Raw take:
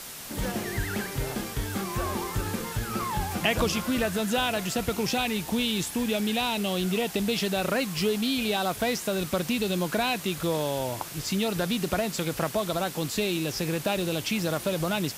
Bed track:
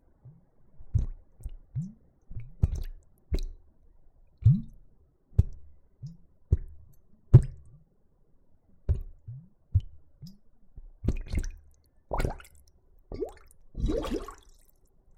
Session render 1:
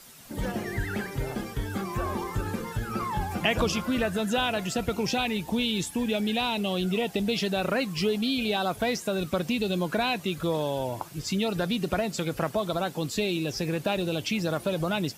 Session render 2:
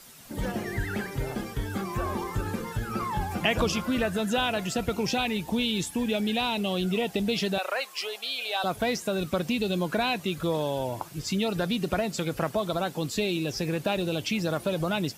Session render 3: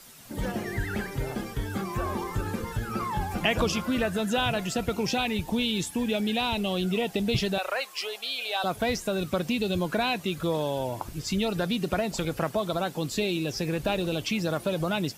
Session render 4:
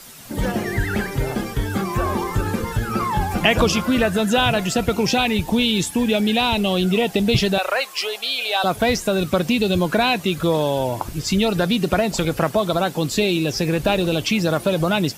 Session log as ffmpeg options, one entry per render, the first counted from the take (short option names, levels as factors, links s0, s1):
-af "afftdn=nr=11:nf=-39"
-filter_complex "[0:a]asettb=1/sr,asplit=3[s0][s1][s2];[s0]atrim=end=7.584[s3];[s1]atrim=start=7.58:end=8.64,asetpts=PTS-STARTPTS,afade=t=in:d=0.004:c=qsin,afade=t=out:st=1.056:d=0.004:c=qsin,highpass=f=570:w=0.5412,highpass=f=570:w=1.3066[s4];[s2]atrim=start=8.636[s5];[s3][s4]acrossfade=d=0.004:c1=hsin:c2=qsin[s6];[s6][s5]acrossfade=d=0.004:c1=qsin:c2=hsin"
-filter_complex "[1:a]volume=0.188[s0];[0:a][s0]amix=inputs=2:normalize=0"
-af "volume=2.66"